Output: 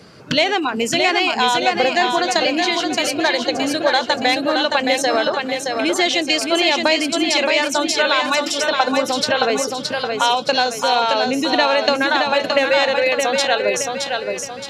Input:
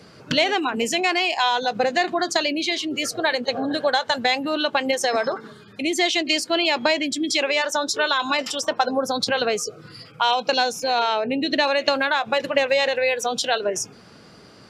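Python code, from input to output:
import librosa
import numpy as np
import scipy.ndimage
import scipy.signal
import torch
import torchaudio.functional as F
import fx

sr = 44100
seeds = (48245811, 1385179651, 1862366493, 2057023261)

p1 = x + fx.echo_feedback(x, sr, ms=620, feedback_pct=44, wet_db=-4.5, dry=0)
y = F.gain(torch.from_numpy(p1), 3.0).numpy()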